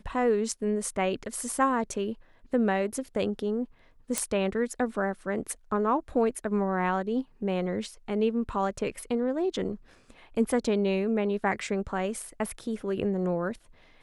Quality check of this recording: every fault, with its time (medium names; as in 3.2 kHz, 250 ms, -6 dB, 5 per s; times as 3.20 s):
4.18 s: pop -11 dBFS